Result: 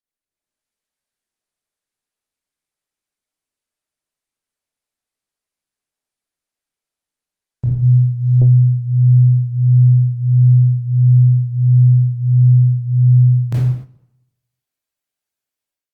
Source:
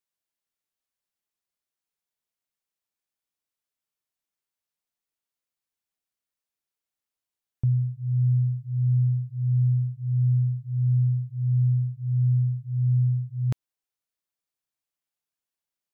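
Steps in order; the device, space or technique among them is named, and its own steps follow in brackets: speakerphone in a meeting room (reverberation RT60 0.90 s, pre-delay 19 ms, DRR -7 dB; level rider gain up to 10.5 dB; gate -22 dBFS, range -9 dB; trim -3.5 dB; Opus 32 kbps 48 kHz)

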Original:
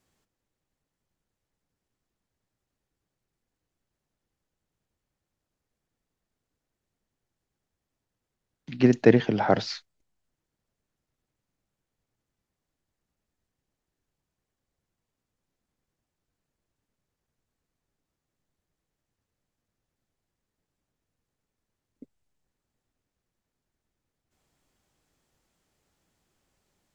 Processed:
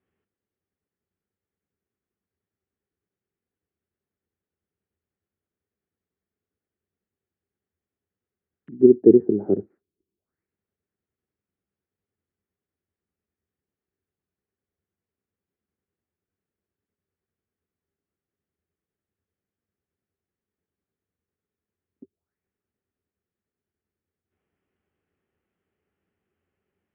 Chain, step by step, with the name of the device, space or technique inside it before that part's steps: envelope filter bass rig (touch-sensitive low-pass 350–3600 Hz down, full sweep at -49 dBFS; cabinet simulation 76–2000 Hz, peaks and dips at 86 Hz +9 dB, 130 Hz -5 dB, 200 Hz +5 dB, 400 Hz +9 dB, 630 Hz -3 dB, 950 Hz -5 dB); trim -6.5 dB

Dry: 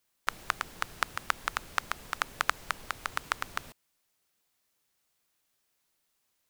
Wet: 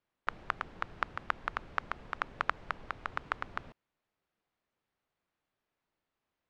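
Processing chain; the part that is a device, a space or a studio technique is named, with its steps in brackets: phone in a pocket (low-pass 3.6 kHz 12 dB/octave; treble shelf 2.3 kHz -11.5 dB)

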